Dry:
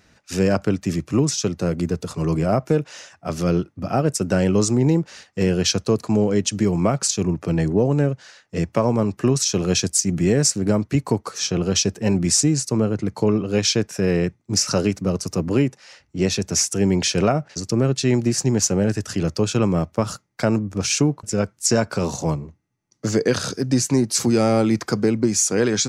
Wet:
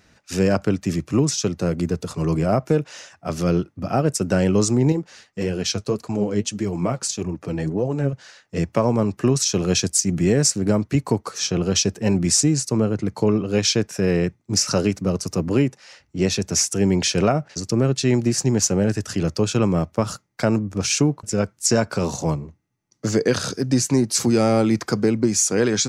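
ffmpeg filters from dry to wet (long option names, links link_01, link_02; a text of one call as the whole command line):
ffmpeg -i in.wav -filter_complex "[0:a]asettb=1/sr,asplit=3[link_01][link_02][link_03];[link_01]atrim=end=4.924[link_04];[link_02]atrim=start=4.92:end=8.13,asetpts=PTS-STARTPTS,afade=type=in:duration=0.004:curve=qsin,afade=type=out:start_time=3.206:duration=0.004:curve=qsin,flanger=delay=1.1:depth=8.7:regen=38:speed=1.7:shape=triangular[link_05];[link_03]atrim=start=8.126[link_06];[link_04][link_05]acrossfade=duration=0.004:curve1=hsin:curve2=qsin[link_07];[link_07][link_06]acrossfade=duration=0.004:curve1=qsin:curve2=hsin" out.wav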